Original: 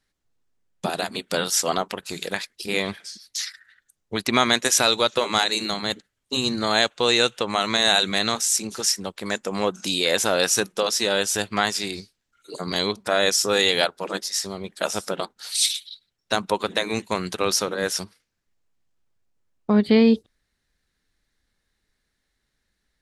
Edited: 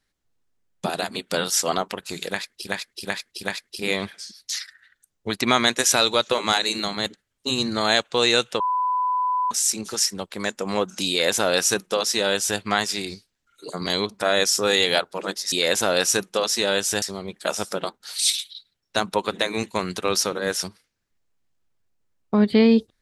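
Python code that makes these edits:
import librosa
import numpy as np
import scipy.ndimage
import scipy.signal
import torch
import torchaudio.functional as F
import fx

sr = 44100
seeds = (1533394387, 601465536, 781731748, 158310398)

y = fx.edit(x, sr, fx.repeat(start_s=2.29, length_s=0.38, count=4),
    fx.bleep(start_s=7.46, length_s=0.91, hz=1000.0, db=-19.5),
    fx.duplicate(start_s=9.95, length_s=1.5, to_s=14.38), tone=tone)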